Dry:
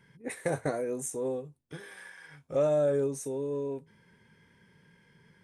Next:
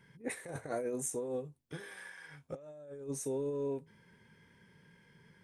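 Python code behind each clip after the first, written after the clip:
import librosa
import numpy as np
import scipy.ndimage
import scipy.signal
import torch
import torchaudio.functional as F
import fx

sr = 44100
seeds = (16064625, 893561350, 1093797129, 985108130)

y = fx.over_compress(x, sr, threshold_db=-33.0, ratio=-0.5)
y = y * 10.0 ** (-4.5 / 20.0)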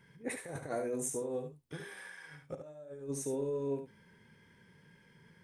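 y = x + 10.0 ** (-7.5 / 20.0) * np.pad(x, (int(72 * sr / 1000.0), 0))[:len(x)]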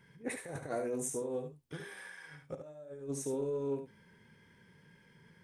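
y = fx.doppler_dist(x, sr, depth_ms=0.1)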